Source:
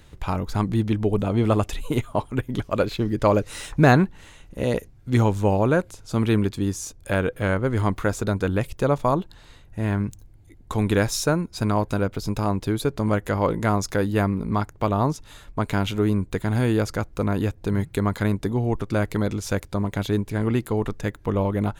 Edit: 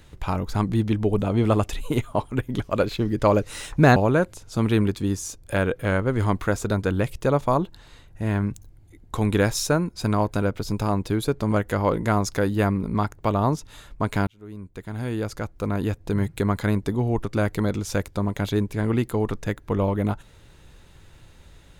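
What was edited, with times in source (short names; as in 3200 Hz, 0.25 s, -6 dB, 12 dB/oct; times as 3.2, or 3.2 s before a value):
3.96–5.53 cut
15.84–17.7 fade in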